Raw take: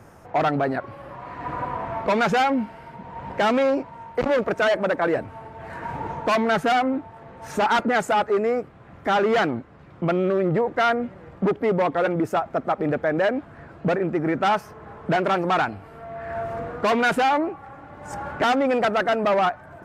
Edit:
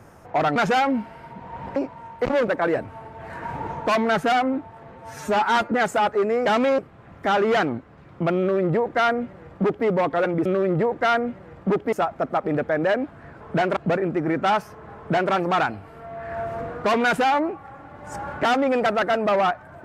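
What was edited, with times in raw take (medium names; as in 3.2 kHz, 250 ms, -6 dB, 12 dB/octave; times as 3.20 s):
0.56–2.19 s: delete
3.39–3.72 s: move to 8.60 s
4.44–4.88 s: delete
7.35–7.86 s: stretch 1.5×
10.21–11.68 s: copy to 12.27 s
14.95–15.31 s: copy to 13.75 s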